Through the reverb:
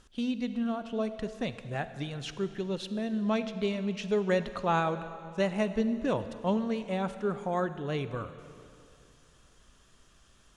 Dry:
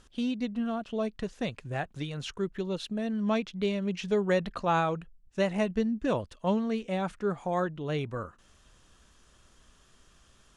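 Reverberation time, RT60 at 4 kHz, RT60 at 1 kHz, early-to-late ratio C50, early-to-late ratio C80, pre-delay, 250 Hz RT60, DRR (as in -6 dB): 2.7 s, 2.3 s, 2.6 s, 12.0 dB, 12.5 dB, 35 ms, 2.8 s, 11.5 dB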